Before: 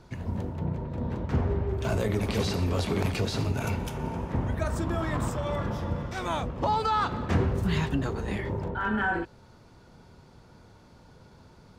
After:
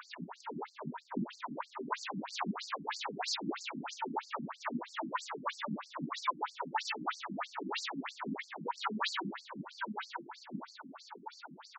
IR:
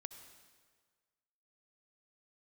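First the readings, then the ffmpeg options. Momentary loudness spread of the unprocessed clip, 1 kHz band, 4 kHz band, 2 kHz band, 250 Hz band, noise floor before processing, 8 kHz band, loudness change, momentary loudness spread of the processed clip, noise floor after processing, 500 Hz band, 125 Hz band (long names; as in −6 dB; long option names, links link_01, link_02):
6 LU, −5.5 dB, −2.0 dB, −7.0 dB, −10.0 dB, −54 dBFS, −4.0 dB, −10.5 dB, 10 LU, −59 dBFS, −14.0 dB, −22.5 dB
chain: -filter_complex "[0:a]aresample=16000,aeval=exprs='0.0473*(abs(mod(val(0)/0.0473+3,4)-2)-1)':channel_layout=same,aresample=44100,lowshelf=frequency=260:gain=8,asplit=2[link_01][link_02];[link_02]adelay=932.9,volume=-13dB,highshelf=frequency=4000:gain=-21[link_03];[link_01][link_03]amix=inputs=2:normalize=0,aphaser=in_gain=1:out_gain=1:delay=2.4:decay=0.67:speed=0.85:type=sinusoidal,equalizer=frequency=125:width_type=o:width=1:gain=-10,equalizer=frequency=500:width_type=o:width=1:gain=-12,equalizer=frequency=1000:width_type=o:width=1:gain=9,equalizer=frequency=4000:width_type=o:width=1:gain=3,acompressor=threshold=-27dB:ratio=2,asoftclip=type=hard:threshold=-22dB,asplit=2[link_04][link_05];[link_05]adelay=46,volume=-6dB[link_06];[link_04][link_06]amix=inputs=2:normalize=0,alimiter=level_in=3.5dB:limit=-24dB:level=0:latency=1:release=454,volume=-3.5dB[link_07];[1:a]atrim=start_sample=2205[link_08];[link_07][link_08]afir=irnorm=-1:irlink=0,afftfilt=real='re*between(b*sr/1024,220*pow(6200/220,0.5+0.5*sin(2*PI*3.1*pts/sr))/1.41,220*pow(6200/220,0.5+0.5*sin(2*PI*3.1*pts/sr))*1.41)':imag='im*between(b*sr/1024,220*pow(6200/220,0.5+0.5*sin(2*PI*3.1*pts/sr))/1.41,220*pow(6200/220,0.5+0.5*sin(2*PI*3.1*pts/sr))*1.41)':win_size=1024:overlap=0.75,volume=14dB"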